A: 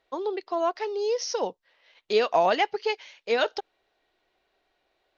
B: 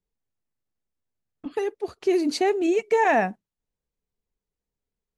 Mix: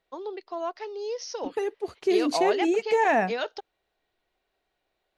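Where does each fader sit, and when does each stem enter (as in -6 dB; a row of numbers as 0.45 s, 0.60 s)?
-6.0 dB, -2.0 dB; 0.00 s, 0.00 s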